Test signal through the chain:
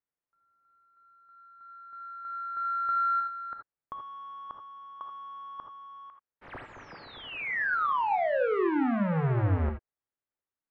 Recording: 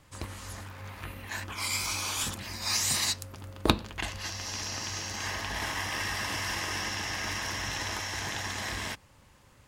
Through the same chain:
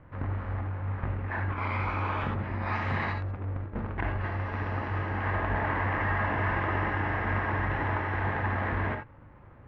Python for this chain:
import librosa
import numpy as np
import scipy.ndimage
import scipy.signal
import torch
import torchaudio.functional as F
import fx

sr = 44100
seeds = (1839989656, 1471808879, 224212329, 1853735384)

y = fx.halfwave_hold(x, sr)
y = scipy.signal.sosfilt(scipy.signal.butter(4, 1900.0, 'lowpass', fs=sr, output='sos'), y)
y = fx.over_compress(y, sr, threshold_db=-30.0, ratio=-0.5)
y = fx.rev_gated(y, sr, seeds[0], gate_ms=100, shape='rising', drr_db=4.5)